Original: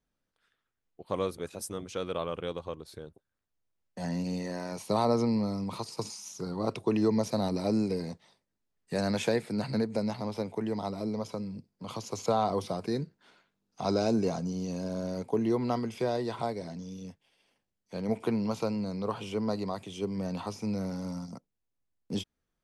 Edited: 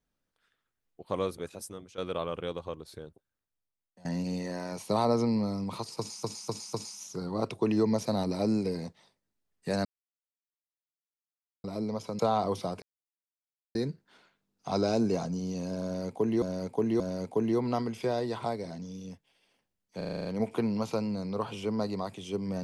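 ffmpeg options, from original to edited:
-filter_complex "[0:a]asplit=19[a][b][c][d][e][f][g][h][i][j][k][l][m][n][o][p][q][r][s];[a]atrim=end=1.98,asetpts=PTS-STARTPTS,afade=t=out:st=1.37:d=0.61:silence=0.211349[t];[b]atrim=start=1.98:end=4.05,asetpts=PTS-STARTPTS,afade=t=in:d=0.004:c=hsin:silence=0.211349,afade=t=out:st=1.02:d=1.05:silence=0.0749894[u];[c]atrim=start=4.05:end=6.232,asetpts=PTS-STARTPTS,afade=t=in:d=0.004:c=hsin:silence=0.0749894[v];[d]atrim=start=5.978:end=6.232[w];[e]atrim=start=5.978:end=6.232[x];[f]atrim=start=5.978:end=9.1,asetpts=PTS-STARTPTS,afade=t=out:st=3.118:d=0.004:c=hsin[y];[g]atrim=start=9.1:end=10.89,asetpts=PTS-STARTPTS,volume=0[z];[h]atrim=start=10.89:end=11.442,asetpts=PTS-STARTPTS,afade=t=in:d=0.004:c=hsin[aa];[i]atrim=start=12.248:end=12.88,asetpts=PTS-STARTPTS,afade=t=out:st=0.628:d=0.004:c=hsin,apad=pad_dur=0.93[ab];[j]atrim=start=12.88:end=15.552,asetpts=PTS-STARTPTS,afade=t=in:d=0.004:c=hsin[ac];[k]atrim=start=14.968:end=15.552[ad];[l]atrim=start=14.968:end=17.982[ae];[m]atrim=start=17.938:end=17.982[af];[n]atrim=start=17.938:end=17.982[ag];[o]atrim=start=17.938:end=17.982[ah];[p]atrim=start=17.938:end=17.982[ai];[q]atrim=start=17.938:end=17.982[aj];[r]atrim=start=17.938:end=17.982[ak];[s]atrim=start=17.938[al];[t][u][v]concat=n=3:v=0:a=1[am];[am][w]acrossfade=d=0.004:c1=hsin:c2=hsin[an];[an][x]acrossfade=d=0.004:c1=hsin:c2=hsin[ao];[y][z][aa]concat=n=3:v=0:a=1[ap];[ao][ap]acrossfade=d=0.004:c1=hsin:c2=hsin[aq];[ab][ac]concat=n=2:v=0:a=1[ar];[aq][ar]acrossfade=d=0.004:c1=hsin:c2=hsin[as];[as][ad]acrossfade=d=0.004:c1=hsin:c2=hsin[at];[at][ae]acrossfade=d=0.004:c1=hsin:c2=hsin[au];[au][af]acrossfade=d=0.004:c1=hsin:c2=hsin[av];[av][ag]acrossfade=d=0.004:c1=hsin:c2=hsin[aw];[aw][ah]acrossfade=d=0.004:c1=hsin:c2=hsin[ax];[ax][ai]acrossfade=d=0.004:c1=hsin:c2=hsin[ay];[ay][aj]acrossfade=d=0.004:c1=hsin:c2=hsin[az];[az][ak]acrossfade=d=0.004:c1=hsin:c2=hsin[ba];[ba][al]acrossfade=d=0.004:c1=hsin:c2=hsin"

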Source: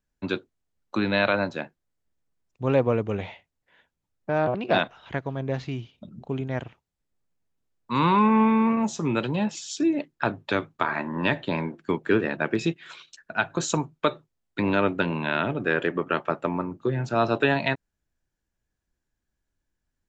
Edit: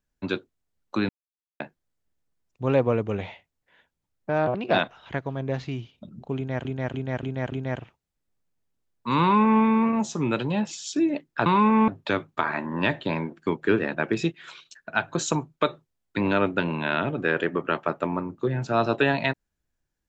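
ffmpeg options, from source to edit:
-filter_complex "[0:a]asplit=9[a][b][c][d][e][f][g][h][i];[a]atrim=end=1.09,asetpts=PTS-STARTPTS,afade=t=out:st=1.086:d=0.004:c=hsin[j];[b]atrim=start=1.09:end=1.6,asetpts=PTS-STARTPTS,volume=0[k];[c]atrim=start=1.6:end=6.652,asetpts=PTS-STARTPTS,afade=t=in:d=0.004:c=hsin[l];[d]atrim=start=6.358:end=6.652[m];[e]atrim=start=6.358:end=6.652[n];[f]atrim=start=6.358:end=6.652[o];[g]atrim=start=6.358:end=10.302[p];[h]atrim=start=8.048:end=8.472[q];[i]atrim=start=10.298[r];[j][k][l]concat=n=3:v=0:a=1[s];[s][m]acrossfade=d=0.004:c1=hsin:c2=hsin[t];[t][n]acrossfade=d=0.004:c1=hsin:c2=hsin[u];[u][o]acrossfade=d=0.004:c1=hsin:c2=hsin[v];[v][p]acrossfade=d=0.004:c1=hsin:c2=hsin[w];[w][q]acrossfade=d=0.004:c1=hsin:c2=hsin[x];[x][r]acrossfade=d=0.004:c1=hsin:c2=hsin"

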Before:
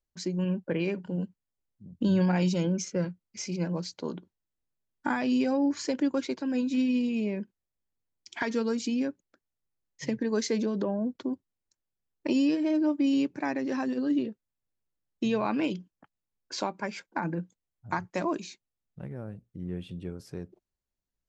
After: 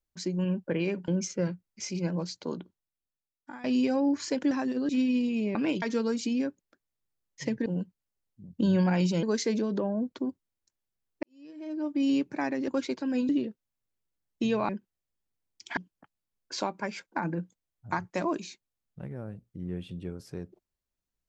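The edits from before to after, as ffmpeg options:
-filter_complex "[0:a]asplit=14[a][b][c][d][e][f][g][h][i][j][k][l][m][n];[a]atrim=end=1.082[o];[b]atrim=start=2.648:end=5.21,asetpts=PTS-STARTPTS,afade=t=out:st=1.482:d=1.08:c=qua:silence=0.16788[p];[c]atrim=start=5.21:end=6.082,asetpts=PTS-STARTPTS,afade=t=in:d=0.004:c=hsin:silence=0.16788[q];[d]atrim=start=13.718:end=14.102[r];[e]atrim=start=6.688:end=7.352[s];[f]atrim=start=15.498:end=15.772[t];[g]atrim=start=8.428:end=10.272[u];[h]atrim=start=1.078:end=2.652[v];[i]atrim=start=10.268:end=12.27,asetpts=PTS-STARTPTS,afade=t=out:st=1.998:d=0.004:c=hsin[w];[j]atrim=start=12.27:end=13.722,asetpts=PTS-STARTPTS,afade=t=in:d=0.86:c=qua[x];[k]atrim=start=6.078:end=6.692[y];[l]atrim=start=14.098:end=15.502[z];[m]atrim=start=7.348:end=8.432[aa];[n]atrim=start=15.768[ab];[p][q]concat=n=2:v=0:a=1[ac];[o][ac]acrossfade=d=0.004:c1=hsin:c2=hsin[ad];[ad][r]acrossfade=d=0.004:c1=hsin:c2=hsin[ae];[ae][s]acrossfade=d=0.004:c1=hsin:c2=hsin[af];[af][t]acrossfade=d=0.004:c1=hsin:c2=hsin[ag];[ag][u]acrossfade=d=0.004:c1=hsin:c2=hsin[ah];[ah][v]acrossfade=d=0.004:c1=hsin:c2=hsin[ai];[w][x]concat=n=2:v=0:a=1[aj];[ai][aj]acrossfade=d=0.004:c1=hsin:c2=hsin[ak];[ak][y]acrossfade=d=0.004:c1=hsin:c2=hsin[al];[al][z]acrossfade=d=0.004:c1=hsin:c2=hsin[am];[am][aa]acrossfade=d=0.004:c1=hsin:c2=hsin[an];[an][ab]acrossfade=d=0.004:c1=hsin:c2=hsin"

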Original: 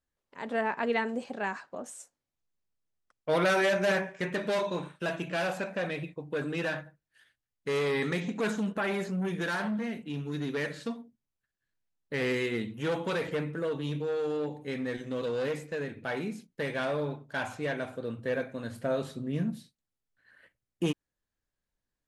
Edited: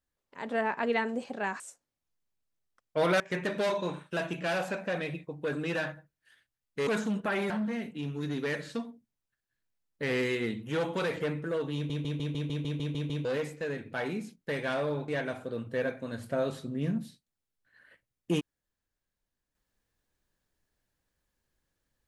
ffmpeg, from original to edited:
-filter_complex "[0:a]asplit=16[a][b][c][d][e][f][g][h][i][j][k][l][m][n][o][p];[a]atrim=end=1.602[q];[b]atrim=start=1.918:end=3.522[r];[c]atrim=start=4.088:end=7.762[s];[d]atrim=start=8.388:end=9.022[t];[e]atrim=start=9.608:end=14.012[u];[f]atrim=start=13.858:end=14.012[v];[g]atrim=start=13.858:end=14.012[w];[h]atrim=start=13.858:end=14.012[x];[i]atrim=start=13.858:end=14.012[y];[j]atrim=start=13.858:end=14.012[z];[k]atrim=start=13.858:end=14.012[aa];[l]atrim=start=13.858:end=14.012[ab];[m]atrim=start=13.858:end=14.012[ac];[n]atrim=start=13.858:end=14.012[ad];[o]atrim=start=15.358:end=17.192[ae];[p]atrim=start=17.598[af];[q][r]acrossfade=d=0.004:c1=hsin:c2=hsin[ag];[ag][s]acrossfade=d=0.004:c1=hsin:c2=hsin[ah];[ah][t]acrossfade=d=0.004:c1=hsin:c2=hsin[ai];[ai][u]acrossfade=d=0.004:c1=hsin:c2=hsin[aj];[aj][v]acrossfade=d=0.004:c1=hsin:c2=hsin[ak];[ak][w]acrossfade=d=0.004:c1=hsin:c2=hsin[al];[al][x]acrossfade=d=0.004:c1=hsin:c2=hsin[am];[am][y]acrossfade=d=0.004:c1=hsin:c2=hsin[an];[an][z]acrossfade=d=0.004:c1=hsin:c2=hsin[ao];[ao][aa]acrossfade=d=0.004:c1=hsin:c2=hsin[ap];[ap][ab]acrossfade=d=0.004:c1=hsin:c2=hsin[aq];[aq][ac]acrossfade=d=0.004:c1=hsin:c2=hsin[ar];[ar][ad]acrossfade=d=0.004:c1=hsin:c2=hsin[as];[as][ae]acrossfade=d=0.004:c1=hsin:c2=hsin[at];[at][af]acrossfade=d=0.004:c1=hsin:c2=hsin"

